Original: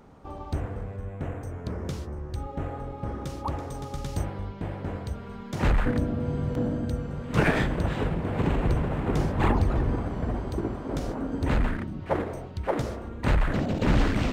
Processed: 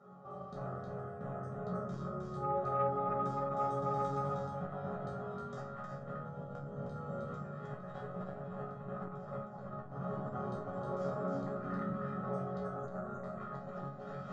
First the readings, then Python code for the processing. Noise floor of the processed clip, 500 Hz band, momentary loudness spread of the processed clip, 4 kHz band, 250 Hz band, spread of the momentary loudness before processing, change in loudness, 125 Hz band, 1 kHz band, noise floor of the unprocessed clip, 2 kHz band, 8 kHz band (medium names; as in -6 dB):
-47 dBFS, -7.0 dB, 10 LU, under -20 dB, -13.0 dB, 11 LU, -10.5 dB, -14.0 dB, -4.0 dB, -40 dBFS, -18.0 dB, under -20 dB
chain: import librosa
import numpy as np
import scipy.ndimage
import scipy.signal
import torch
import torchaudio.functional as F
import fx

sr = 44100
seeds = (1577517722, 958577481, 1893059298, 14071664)

p1 = scipy.signal.sosfilt(scipy.signal.butter(4, 110.0, 'highpass', fs=sr, output='sos'), x)
p2 = fx.spec_erase(p1, sr, start_s=12.6, length_s=0.45, low_hz=1800.0, high_hz=5900.0)
p3 = scipy.signal.sosfilt(scipy.signal.butter(6, 7700.0, 'lowpass', fs=sr, output='sos'), p2)
p4 = fx.high_shelf_res(p3, sr, hz=1800.0, db=-8.5, q=3.0)
p5 = p4 + 0.84 * np.pad(p4, (int(1.6 * sr / 1000.0), 0))[:len(p4)]
p6 = fx.dynamic_eq(p5, sr, hz=320.0, q=1.4, threshold_db=-37.0, ratio=4.0, max_db=-3)
p7 = fx.over_compress(p6, sr, threshold_db=-31.0, ratio=-0.5)
p8 = fx.resonator_bank(p7, sr, root=49, chord='sus4', decay_s=0.36)
p9 = p8 + fx.echo_single(p8, sr, ms=312, db=-3.5, dry=0)
p10 = fx.room_shoebox(p9, sr, seeds[0], volume_m3=220.0, walls='furnished', distance_m=1.2)
p11 = fx.transformer_sat(p10, sr, knee_hz=320.0)
y = F.gain(torch.from_numpy(p11), 3.5).numpy()